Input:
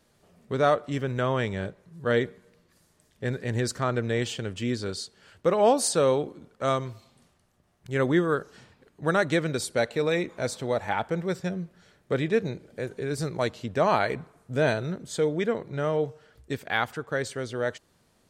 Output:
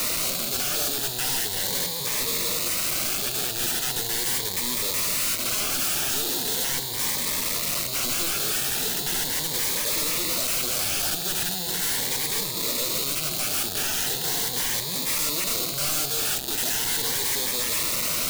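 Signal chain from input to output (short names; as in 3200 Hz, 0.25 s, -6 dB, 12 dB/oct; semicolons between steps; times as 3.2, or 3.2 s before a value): delta modulation 16 kbps, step -22 dBFS; HPF 1400 Hz 12 dB/oct; in parallel at 0 dB: negative-ratio compressor -35 dBFS, ratio -1; on the sum: sample leveller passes 3; wrapped overs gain 27.5 dB; reverb RT60 0.40 s, pre-delay 6 ms, DRR 10.5 dB; cascading phaser rising 0.39 Hz; gain +7 dB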